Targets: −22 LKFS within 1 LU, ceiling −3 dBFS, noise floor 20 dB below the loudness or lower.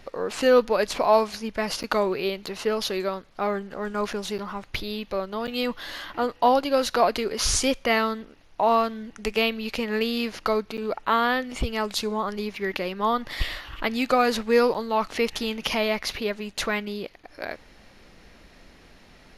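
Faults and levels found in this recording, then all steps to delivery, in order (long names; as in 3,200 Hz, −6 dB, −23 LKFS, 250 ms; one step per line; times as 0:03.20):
number of dropouts 6; longest dropout 7.9 ms; integrated loudness −25.5 LKFS; sample peak −7.5 dBFS; target loudness −22.0 LKFS
→ repair the gap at 0:01.83/0:02.46/0:04.38/0:05.47/0:10.77/0:14.74, 7.9 ms
level +3.5 dB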